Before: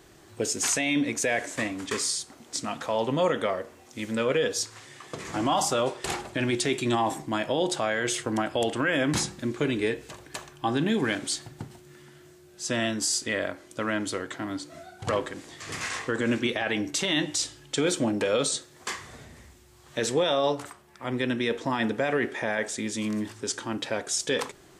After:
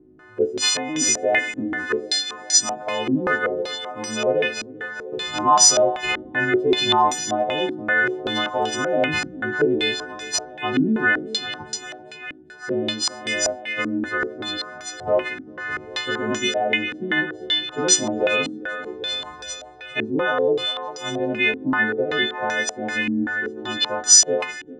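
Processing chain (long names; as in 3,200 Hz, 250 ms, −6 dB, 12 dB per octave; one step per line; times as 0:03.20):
every partial snapped to a pitch grid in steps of 3 semitones
parametric band 370 Hz +4.5 dB 0.25 octaves
feedback echo with a high-pass in the loop 396 ms, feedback 75%, high-pass 370 Hz, level −10 dB
low-pass on a step sequencer 5.2 Hz 280–5,800 Hz
level −1 dB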